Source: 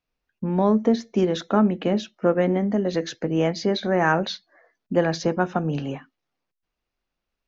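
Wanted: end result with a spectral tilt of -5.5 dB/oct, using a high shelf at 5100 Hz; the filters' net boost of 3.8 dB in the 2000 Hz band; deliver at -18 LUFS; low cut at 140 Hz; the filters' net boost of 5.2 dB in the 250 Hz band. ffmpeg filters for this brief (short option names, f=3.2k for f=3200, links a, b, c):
-af "highpass=140,equalizer=f=250:t=o:g=8,equalizer=f=2k:t=o:g=4,highshelf=f=5.1k:g=8,volume=1.5dB"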